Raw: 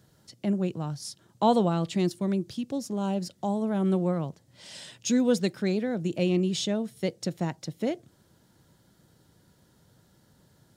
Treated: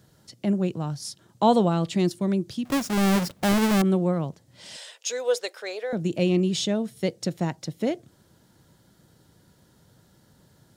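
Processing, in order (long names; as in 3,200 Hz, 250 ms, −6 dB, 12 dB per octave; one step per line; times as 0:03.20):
0:02.65–0:03.82: each half-wave held at its own peak
0:04.76–0:05.93: Chebyshev high-pass filter 470 Hz, order 4
level +3 dB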